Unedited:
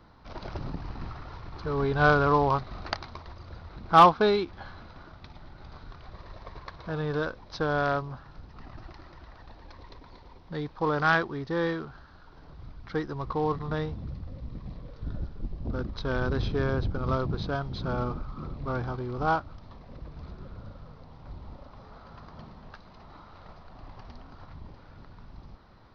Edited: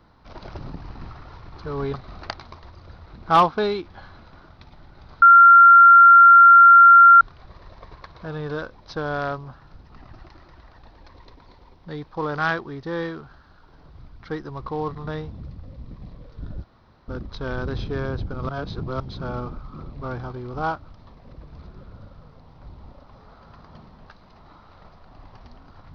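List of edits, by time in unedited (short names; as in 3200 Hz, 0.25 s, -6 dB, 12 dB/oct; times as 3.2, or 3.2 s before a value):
1.94–2.57 cut
5.85 add tone 1380 Hz -6 dBFS 1.99 s
15.28–15.72 room tone
17.13–17.64 reverse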